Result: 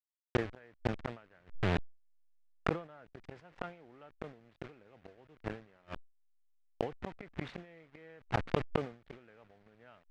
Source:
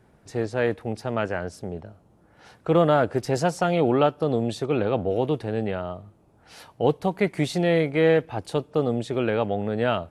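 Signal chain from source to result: level-crossing sampler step -28 dBFS; LPF 3600 Hz 12 dB/oct; bell 1900 Hz +9 dB 1.5 oct; flipped gate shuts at -17 dBFS, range -40 dB; sustainer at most 150 dB/s; gain +2.5 dB

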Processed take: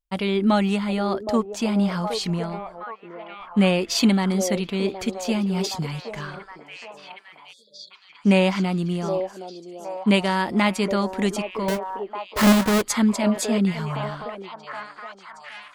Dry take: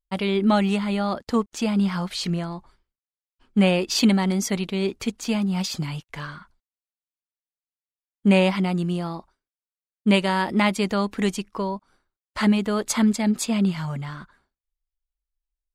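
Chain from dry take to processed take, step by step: 11.68–12.82 half-waves squared off; delay with a stepping band-pass 0.768 s, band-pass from 520 Hz, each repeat 0.7 oct, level -3 dB; 7.53–7.91 spectral delete 620–3300 Hz

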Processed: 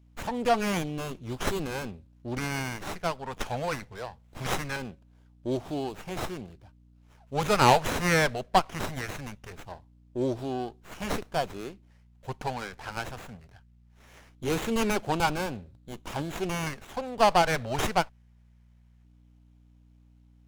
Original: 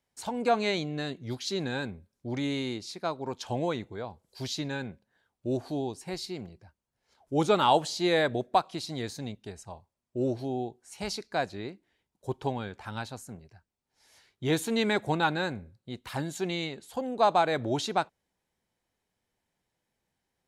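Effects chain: bell 3800 Hz +11.5 dB 2.9 oct; hum 60 Hz, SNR 29 dB; LFO notch square 0.21 Hz 330–1800 Hz; running maximum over 9 samples

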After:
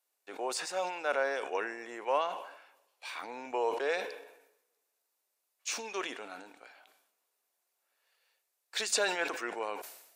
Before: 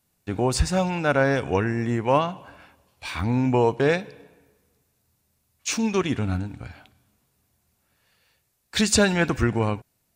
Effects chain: HPF 440 Hz 24 dB/oct; sustainer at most 68 dB/s; gain -9 dB

